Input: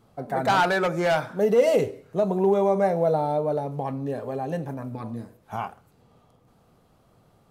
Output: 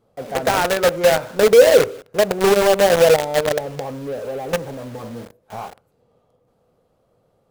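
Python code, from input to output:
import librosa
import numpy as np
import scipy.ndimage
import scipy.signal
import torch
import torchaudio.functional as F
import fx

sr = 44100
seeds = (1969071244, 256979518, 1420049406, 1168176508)

p1 = fx.peak_eq(x, sr, hz=510.0, db=11.5, octaves=0.65)
p2 = fx.quant_companded(p1, sr, bits=2)
p3 = p1 + (p2 * librosa.db_to_amplitude(-4.0))
y = p3 * librosa.db_to_amplitude(-7.0)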